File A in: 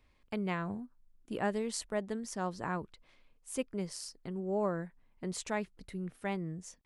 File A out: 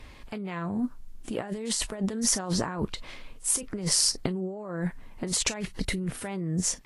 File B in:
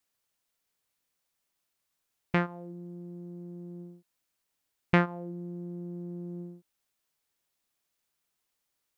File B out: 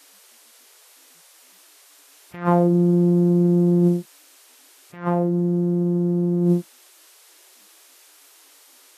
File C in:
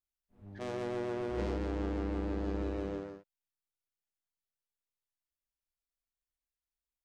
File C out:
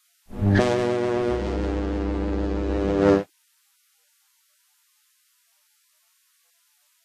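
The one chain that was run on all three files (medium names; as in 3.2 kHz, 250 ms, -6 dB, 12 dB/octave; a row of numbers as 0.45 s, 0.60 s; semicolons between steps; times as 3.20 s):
compressor with a negative ratio -45 dBFS, ratio -1; Vorbis 32 kbps 44.1 kHz; peak normalisation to -6 dBFS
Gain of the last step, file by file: +14.0 dB, +23.0 dB, +22.5 dB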